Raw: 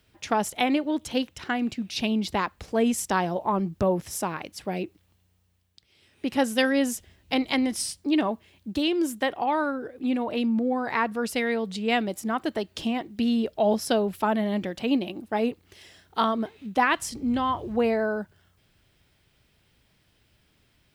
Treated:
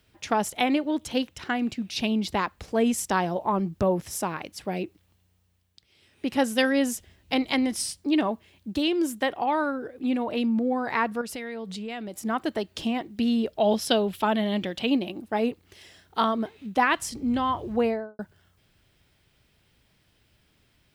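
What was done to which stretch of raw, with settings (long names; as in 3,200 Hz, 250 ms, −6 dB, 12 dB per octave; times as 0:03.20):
0:11.21–0:12.21: downward compressor 5 to 1, threshold −32 dBFS
0:13.61–0:14.90: parametric band 3,300 Hz +8.5 dB 0.74 octaves
0:17.79–0:18.19: fade out and dull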